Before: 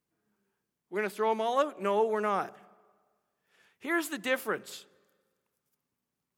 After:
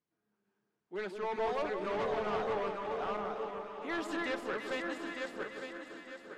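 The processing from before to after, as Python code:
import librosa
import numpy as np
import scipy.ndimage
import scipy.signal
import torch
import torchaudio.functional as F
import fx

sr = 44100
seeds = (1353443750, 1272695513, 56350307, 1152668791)

y = fx.reverse_delay_fb(x, sr, ms=453, feedback_pct=57, wet_db=-2)
y = fx.low_shelf(y, sr, hz=91.0, db=-8.5)
y = np.clip(y, -10.0 ** (-27.5 / 20.0), 10.0 ** (-27.5 / 20.0))
y = fx.air_absorb(y, sr, metres=100.0)
y = fx.echo_alternate(y, sr, ms=171, hz=1200.0, feedback_pct=76, wet_db=-6.0)
y = y * 10.0 ** (-4.0 / 20.0)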